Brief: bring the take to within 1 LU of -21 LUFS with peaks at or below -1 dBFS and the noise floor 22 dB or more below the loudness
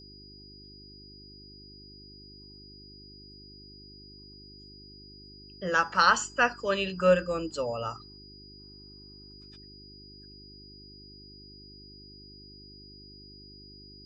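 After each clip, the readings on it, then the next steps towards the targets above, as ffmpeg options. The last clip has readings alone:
hum 50 Hz; harmonics up to 400 Hz; hum level -50 dBFS; steady tone 4900 Hz; tone level -50 dBFS; loudness -26.5 LUFS; peak -8.0 dBFS; loudness target -21.0 LUFS
-> -af "bandreject=f=50:t=h:w=4,bandreject=f=100:t=h:w=4,bandreject=f=150:t=h:w=4,bandreject=f=200:t=h:w=4,bandreject=f=250:t=h:w=4,bandreject=f=300:t=h:w=4,bandreject=f=350:t=h:w=4,bandreject=f=400:t=h:w=4"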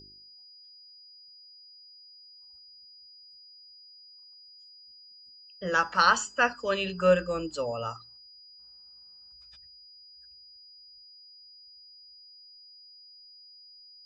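hum none; steady tone 4900 Hz; tone level -50 dBFS
-> -af "bandreject=f=4.9k:w=30"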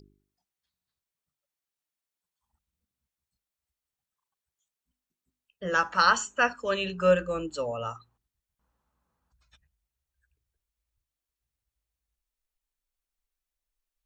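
steady tone none; loudness -26.0 LUFS; peak -8.0 dBFS; loudness target -21.0 LUFS
-> -af "volume=5dB"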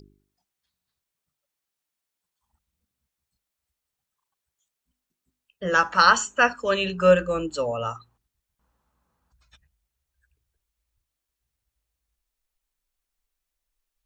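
loudness -21.0 LUFS; peak -3.0 dBFS; noise floor -85 dBFS

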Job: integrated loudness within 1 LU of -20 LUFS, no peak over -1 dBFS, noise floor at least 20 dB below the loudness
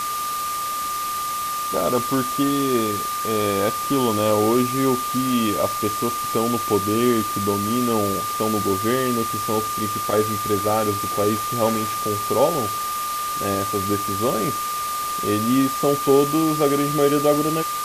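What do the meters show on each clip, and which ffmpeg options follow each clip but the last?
steady tone 1200 Hz; tone level -24 dBFS; noise floor -26 dBFS; noise floor target -41 dBFS; loudness -21.0 LUFS; peak -4.5 dBFS; loudness target -20.0 LUFS
-> -af "bandreject=f=1.2k:w=30"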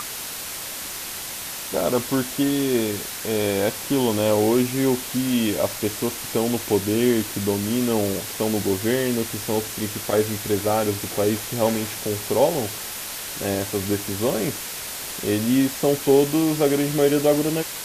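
steady tone none; noise floor -33 dBFS; noise floor target -43 dBFS
-> -af "afftdn=nr=10:nf=-33"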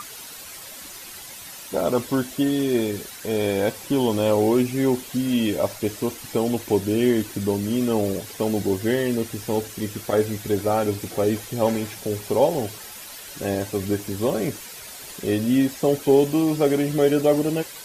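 noise floor -39 dBFS; noise floor target -43 dBFS
-> -af "afftdn=nr=6:nf=-39"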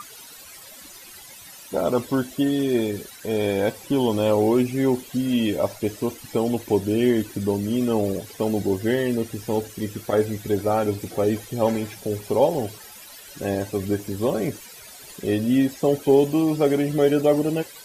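noise floor -44 dBFS; loudness -23.0 LUFS; peak -5.5 dBFS; loudness target -20.0 LUFS
-> -af "volume=3dB"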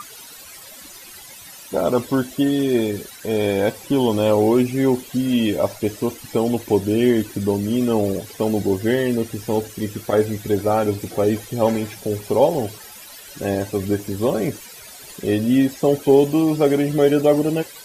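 loudness -20.0 LUFS; peak -2.5 dBFS; noise floor -41 dBFS

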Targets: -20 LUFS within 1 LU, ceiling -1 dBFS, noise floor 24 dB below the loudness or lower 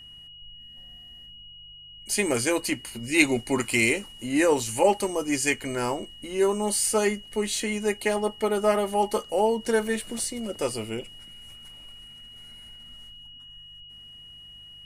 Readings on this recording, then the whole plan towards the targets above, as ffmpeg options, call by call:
hum 50 Hz; harmonics up to 150 Hz; hum level -58 dBFS; steady tone 2900 Hz; tone level -44 dBFS; loudness -25.5 LUFS; peak -4.0 dBFS; loudness target -20.0 LUFS
-> -af "bandreject=f=50:t=h:w=4,bandreject=f=100:t=h:w=4,bandreject=f=150:t=h:w=4"
-af "bandreject=f=2.9k:w=30"
-af "volume=5.5dB,alimiter=limit=-1dB:level=0:latency=1"

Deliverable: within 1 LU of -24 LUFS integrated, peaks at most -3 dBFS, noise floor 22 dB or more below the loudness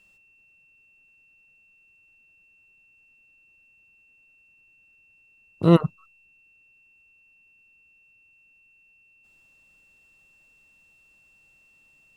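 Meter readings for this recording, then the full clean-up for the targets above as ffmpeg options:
steady tone 2700 Hz; tone level -57 dBFS; loudness -20.5 LUFS; peak -3.0 dBFS; loudness target -24.0 LUFS
-> -af "bandreject=f=2.7k:w=30"
-af "volume=-3.5dB"

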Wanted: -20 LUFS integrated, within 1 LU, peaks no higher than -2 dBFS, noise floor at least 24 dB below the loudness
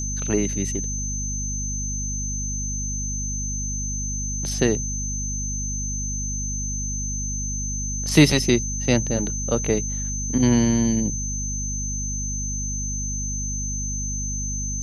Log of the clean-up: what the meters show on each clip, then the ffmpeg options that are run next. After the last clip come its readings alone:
hum 50 Hz; harmonics up to 250 Hz; hum level -27 dBFS; steady tone 6200 Hz; tone level -28 dBFS; loudness -24.0 LUFS; peak -2.0 dBFS; loudness target -20.0 LUFS
-> -af "bandreject=f=50:t=h:w=6,bandreject=f=100:t=h:w=6,bandreject=f=150:t=h:w=6,bandreject=f=200:t=h:w=6,bandreject=f=250:t=h:w=6"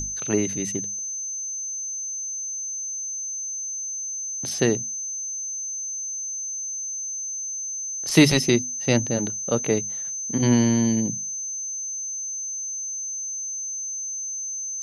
hum none; steady tone 6200 Hz; tone level -28 dBFS
-> -af "bandreject=f=6.2k:w=30"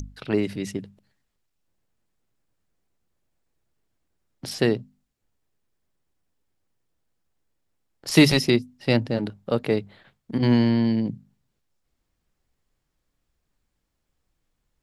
steady tone none; loudness -23.0 LUFS; peak -3.0 dBFS; loudness target -20.0 LUFS
-> -af "volume=3dB,alimiter=limit=-2dB:level=0:latency=1"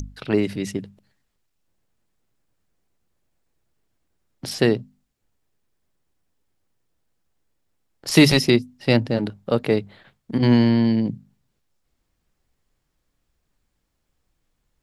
loudness -20.0 LUFS; peak -2.0 dBFS; noise floor -75 dBFS

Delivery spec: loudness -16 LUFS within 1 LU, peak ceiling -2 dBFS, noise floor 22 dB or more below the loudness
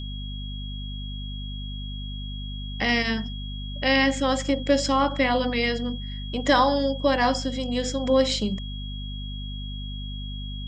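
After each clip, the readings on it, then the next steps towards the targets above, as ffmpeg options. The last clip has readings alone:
hum 50 Hz; harmonics up to 250 Hz; hum level -31 dBFS; steady tone 3300 Hz; tone level -39 dBFS; loudness -26.0 LUFS; peak -7.0 dBFS; loudness target -16.0 LUFS
-> -af "bandreject=f=50:t=h:w=6,bandreject=f=100:t=h:w=6,bandreject=f=150:t=h:w=6,bandreject=f=200:t=h:w=6,bandreject=f=250:t=h:w=6"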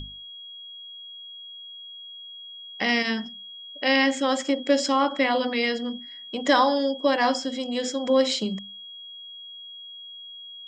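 hum none; steady tone 3300 Hz; tone level -39 dBFS
-> -af "bandreject=f=3.3k:w=30"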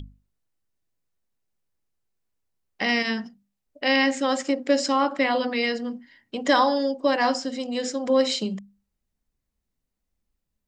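steady tone none; loudness -23.5 LUFS; peak -6.5 dBFS; loudness target -16.0 LUFS
-> -af "volume=7.5dB,alimiter=limit=-2dB:level=0:latency=1"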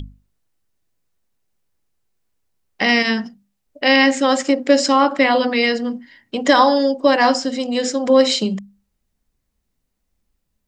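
loudness -16.5 LUFS; peak -2.0 dBFS; noise floor -74 dBFS

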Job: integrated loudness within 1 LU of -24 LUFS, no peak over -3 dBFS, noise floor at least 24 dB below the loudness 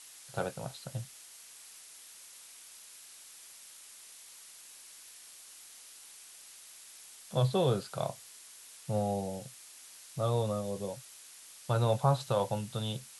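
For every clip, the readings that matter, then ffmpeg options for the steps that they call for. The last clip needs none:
noise floor -53 dBFS; noise floor target -58 dBFS; loudness -33.5 LUFS; peak -15.0 dBFS; loudness target -24.0 LUFS
-> -af "afftdn=nr=6:nf=-53"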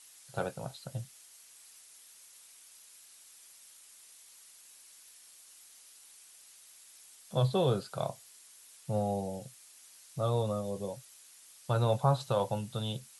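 noise floor -57 dBFS; noise floor target -58 dBFS
-> -af "afftdn=nr=6:nf=-57"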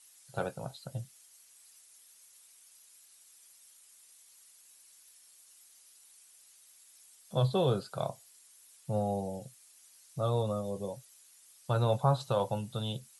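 noise floor -60 dBFS; loudness -33.5 LUFS; peak -15.0 dBFS; loudness target -24.0 LUFS
-> -af "volume=9.5dB"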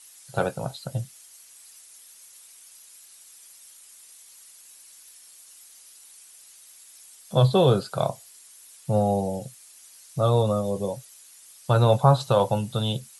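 loudness -24.0 LUFS; peak -5.5 dBFS; noise floor -51 dBFS

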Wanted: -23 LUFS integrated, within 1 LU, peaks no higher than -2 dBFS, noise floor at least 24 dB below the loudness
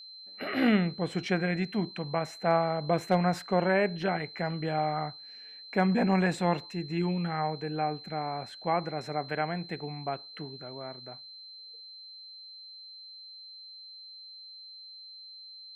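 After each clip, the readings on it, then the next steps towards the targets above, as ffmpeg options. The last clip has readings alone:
steady tone 4100 Hz; tone level -45 dBFS; loudness -30.0 LUFS; peak -11.5 dBFS; loudness target -23.0 LUFS
-> -af "bandreject=f=4.1k:w=30"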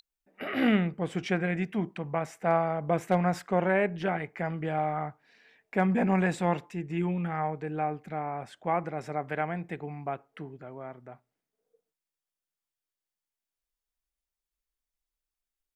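steady tone none; loudness -30.0 LUFS; peak -11.5 dBFS; loudness target -23.0 LUFS
-> -af "volume=7dB"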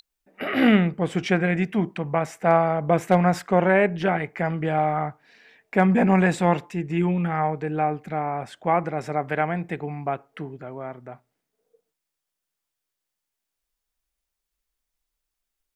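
loudness -23.0 LUFS; peak -4.5 dBFS; noise floor -84 dBFS

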